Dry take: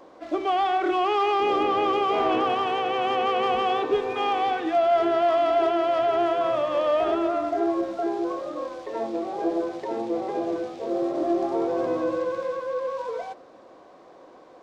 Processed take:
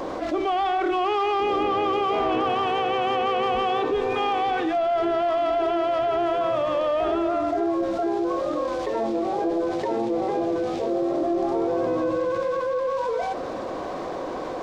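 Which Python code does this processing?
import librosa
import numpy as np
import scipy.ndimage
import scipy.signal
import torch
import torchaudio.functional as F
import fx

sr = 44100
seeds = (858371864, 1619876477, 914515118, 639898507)

y = fx.low_shelf(x, sr, hz=100.0, db=12.0)
y = fx.env_flatten(y, sr, amount_pct=70)
y = y * librosa.db_to_amplitude(-4.0)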